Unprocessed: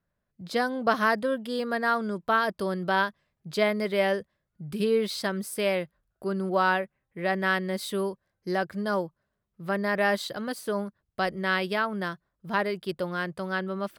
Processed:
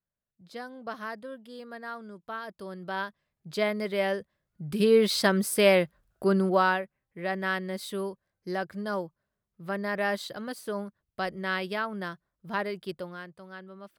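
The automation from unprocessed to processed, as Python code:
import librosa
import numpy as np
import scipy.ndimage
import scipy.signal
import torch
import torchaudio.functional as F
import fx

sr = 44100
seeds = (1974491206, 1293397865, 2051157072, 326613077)

y = fx.gain(x, sr, db=fx.line((2.4, -13.5), (3.55, -3.0), (4.16, -3.0), (5.17, 6.0), (6.36, 6.0), (6.83, -4.0), (12.89, -4.0), (13.35, -14.5)))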